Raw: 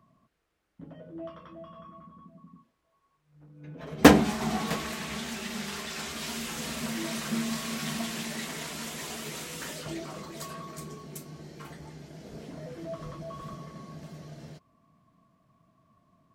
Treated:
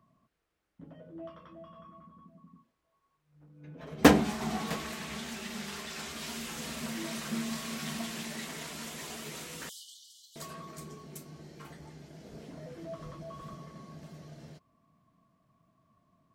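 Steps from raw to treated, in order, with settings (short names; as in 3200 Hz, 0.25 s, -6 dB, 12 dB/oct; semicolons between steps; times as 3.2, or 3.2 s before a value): 9.69–10.36 brick-wall FIR high-pass 2900 Hz; gain -4 dB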